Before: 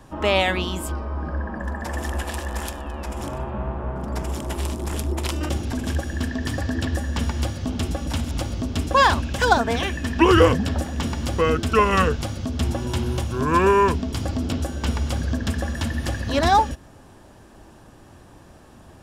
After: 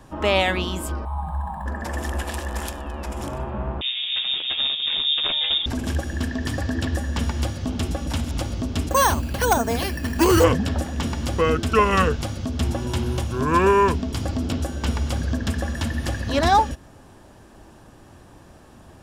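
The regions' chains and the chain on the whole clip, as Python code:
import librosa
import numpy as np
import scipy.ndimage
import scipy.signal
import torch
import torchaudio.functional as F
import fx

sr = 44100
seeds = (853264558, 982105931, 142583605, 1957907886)

y = fx.chain(x, sr, fx.sample_hold(seeds[0], rate_hz=9300.0, jitter_pct=0),
    fx.curve_eq(hz=(180.0, 260.0, 530.0, 840.0, 1500.0, 2400.0, 3800.0, 5700.0, 9100.0), db=(0, -21, -18, 11, -11, -7, -3, -25, -16)), at=(1.05, 1.66))
y = fx.chain(y, sr, fx.freq_invert(carrier_hz=3600),
    fx.doubler(ms=12.0, db=-4.5), at=(3.81, 5.66))
y = fx.chain(y, sr, fx.resample_bad(factor=6, down='filtered', up='hold'),
    fx.dynamic_eq(hz=1700.0, q=1.0, threshold_db=-30.0, ratio=4.0, max_db=-4),
    fx.clip_hard(threshold_db=-11.0), at=(8.89, 10.44))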